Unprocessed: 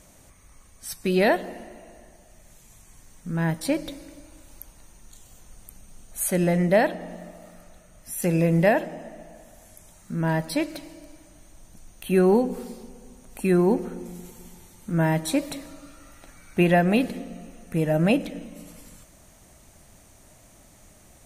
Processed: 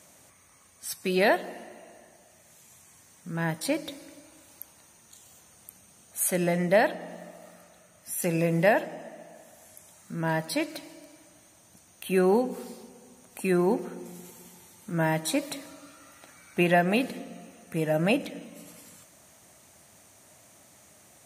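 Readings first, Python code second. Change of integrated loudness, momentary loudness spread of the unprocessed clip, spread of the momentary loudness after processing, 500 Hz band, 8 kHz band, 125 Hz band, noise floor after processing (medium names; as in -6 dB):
-3.5 dB, 21 LU, 22 LU, -2.5 dB, 0.0 dB, -6.0 dB, -58 dBFS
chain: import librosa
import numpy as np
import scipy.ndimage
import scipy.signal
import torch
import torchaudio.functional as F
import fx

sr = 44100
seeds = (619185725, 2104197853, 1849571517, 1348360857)

y = scipy.signal.sosfilt(scipy.signal.butter(4, 84.0, 'highpass', fs=sr, output='sos'), x)
y = fx.low_shelf(y, sr, hz=370.0, db=-7.5)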